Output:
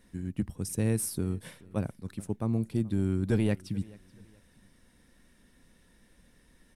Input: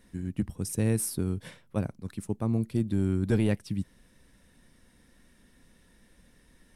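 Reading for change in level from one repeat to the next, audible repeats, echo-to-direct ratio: -10.0 dB, 2, -22.5 dB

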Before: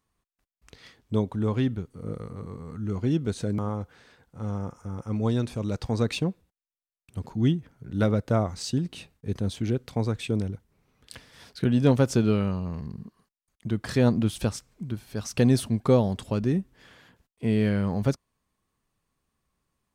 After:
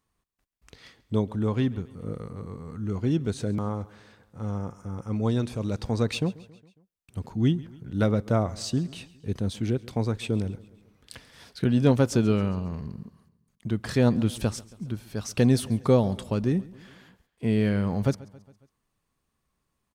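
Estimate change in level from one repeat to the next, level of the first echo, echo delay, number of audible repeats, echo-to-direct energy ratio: -5.0 dB, -21.0 dB, 137 ms, 3, -19.5 dB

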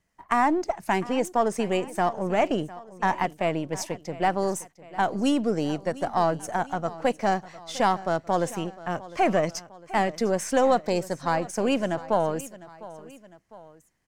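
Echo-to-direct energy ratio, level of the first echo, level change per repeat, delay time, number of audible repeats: -17.0 dB, -18.0 dB, -5.5 dB, 704 ms, 2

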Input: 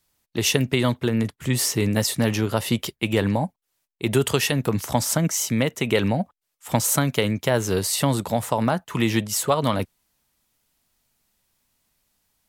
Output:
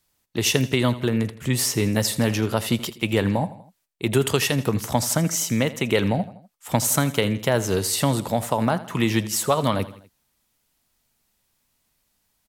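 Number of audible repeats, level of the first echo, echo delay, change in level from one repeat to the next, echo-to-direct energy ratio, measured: 3, -16.5 dB, 82 ms, -5.5 dB, -15.0 dB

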